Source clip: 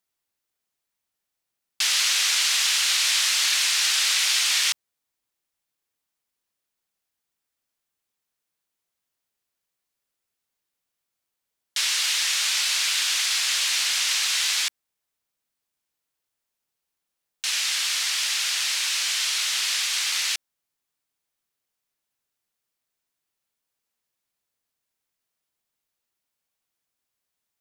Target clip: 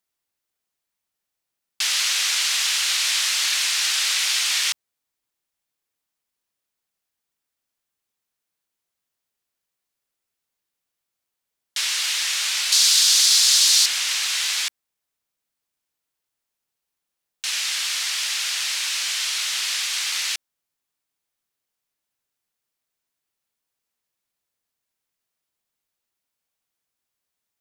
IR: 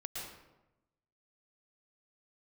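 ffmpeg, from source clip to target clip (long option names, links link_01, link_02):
-filter_complex "[0:a]asettb=1/sr,asplit=3[link_01][link_02][link_03];[link_01]atrim=end=12.724[link_04];[link_02]atrim=start=12.72:end=13.86,asetpts=PTS-STARTPTS,afade=type=in:duration=0.004:curve=qsin,afade=type=out:start_time=1.136:duration=0.004:curve=qsin,highshelf=frequency=3300:width_type=q:width=1.5:gain=8[link_05];[link_03]atrim=start=13.856[link_06];[link_04][link_05]acrossfade=duration=0.004:curve1=hsin:curve2=qsin[link_07];[link_07][link_06]acrossfade=duration=0.004:curve1=qsin:curve2=hsin"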